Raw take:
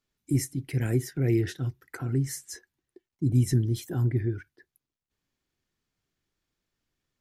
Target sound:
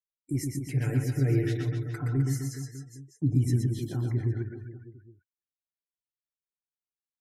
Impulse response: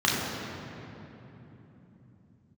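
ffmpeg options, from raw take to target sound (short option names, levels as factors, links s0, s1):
-filter_complex "[0:a]agate=range=0.447:threshold=0.00316:ratio=16:detection=peak,asettb=1/sr,asplit=3[s0][s1][s2];[s0]atrim=end=0.694[s3];[s1]atrim=start=0.69:end=3.35,asetpts=PTS-STARTPTS,afade=t=in:d=0.004:c=qsin,afade=t=out:st=2.656:d=0.004:c=qsin,aecho=1:1:6.8:0.94,atrim=end_sample=117306[s4];[s2]atrim=start=3.346[s5];[s3][s4]acrossfade=d=0.004:c1=hsin:c2=qsin[s6];[s6][s5]acrossfade=d=0.004:c1=qsin:c2=hsin,aecho=1:1:120|258|416.7|599.2|809.1:0.631|0.398|0.251|0.158|0.1,afftdn=nr=22:nf=-51,adynamicequalizer=threshold=0.00316:dfrequency=4100:dqfactor=0.7:tfrequency=4100:tqfactor=0.7:attack=5:release=100:ratio=0.375:range=2:mode=cutabove:tftype=highshelf,volume=0.562"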